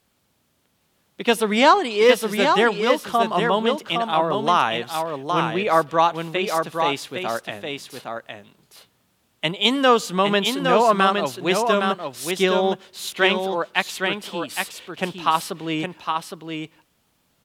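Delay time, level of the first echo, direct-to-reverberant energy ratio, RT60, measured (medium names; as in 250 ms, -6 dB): 813 ms, -5.0 dB, no reverb, no reverb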